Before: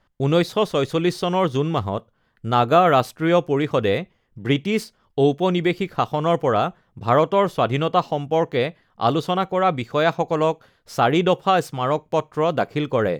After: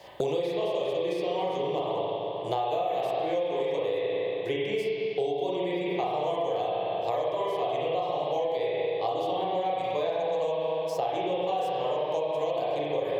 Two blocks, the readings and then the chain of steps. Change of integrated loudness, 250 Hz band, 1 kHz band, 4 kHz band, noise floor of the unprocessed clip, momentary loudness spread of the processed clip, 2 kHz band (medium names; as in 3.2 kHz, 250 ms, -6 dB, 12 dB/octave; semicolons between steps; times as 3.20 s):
-8.0 dB, -14.0 dB, -8.5 dB, -8.5 dB, -65 dBFS, 1 LU, -12.0 dB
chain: spring tank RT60 1.7 s, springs 34/38 ms, chirp 30 ms, DRR -7.5 dB; compression, threshold -14 dBFS, peak gain reduction 12 dB; high-pass 220 Hz 12 dB/octave; static phaser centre 570 Hz, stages 4; three bands compressed up and down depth 100%; trim -9 dB